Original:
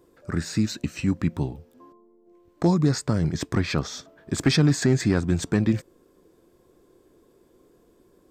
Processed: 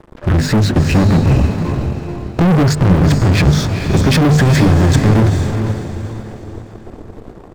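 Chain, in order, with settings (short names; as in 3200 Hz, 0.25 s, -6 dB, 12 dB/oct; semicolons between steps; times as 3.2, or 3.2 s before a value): RIAA curve playback; notches 50/100/150/200/250 Hz; limiter -10.5 dBFS, peak gain reduction 9 dB; sample leveller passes 5; diffused feedback echo 0.496 s, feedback 41%, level -6.5 dB; tempo 1.1×; gain +2 dB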